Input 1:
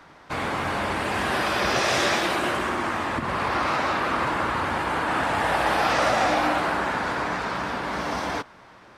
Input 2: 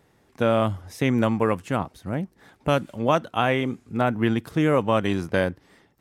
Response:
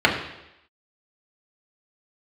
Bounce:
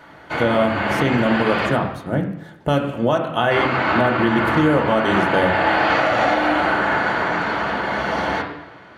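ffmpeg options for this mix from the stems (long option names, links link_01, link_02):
-filter_complex "[0:a]volume=-7.5dB,asplit=3[link_01][link_02][link_03];[link_01]atrim=end=1.66,asetpts=PTS-STARTPTS,afade=type=out:start_time=1.656:duration=0.004:curve=hsin[link_04];[link_02]atrim=start=1.66:end=3.51,asetpts=PTS-STARTPTS,volume=0[link_05];[link_03]atrim=start=3.51,asetpts=PTS-STARTPTS,afade=type=in:duration=0.004:curve=hsin[link_06];[link_04][link_05][link_06]concat=n=3:v=0:a=1,asplit=2[link_07][link_08];[link_08]volume=-7.5dB[link_09];[1:a]volume=2dB,asplit=3[link_10][link_11][link_12];[link_11]volume=-18.5dB[link_13];[link_12]apad=whole_len=395706[link_14];[link_07][link_14]sidechaincompress=threshold=-38dB:ratio=8:attack=16:release=533[link_15];[2:a]atrim=start_sample=2205[link_16];[link_09][link_13]amix=inputs=2:normalize=0[link_17];[link_17][link_16]afir=irnorm=-1:irlink=0[link_18];[link_15][link_10][link_18]amix=inputs=3:normalize=0,alimiter=limit=-7dB:level=0:latency=1:release=238"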